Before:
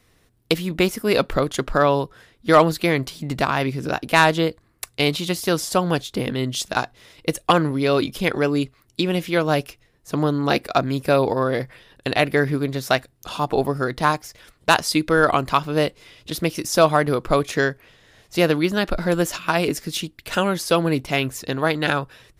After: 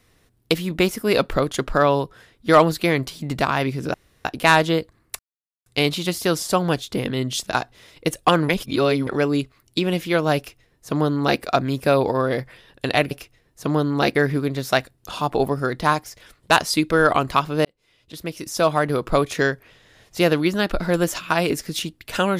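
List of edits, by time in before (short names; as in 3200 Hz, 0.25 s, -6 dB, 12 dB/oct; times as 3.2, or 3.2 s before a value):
3.94 insert room tone 0.31 s
4.88 insert silence 0.47 s
7.71–8.29 reverse
9.59–10.63 copy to 12.33
15.83–17.3 fade in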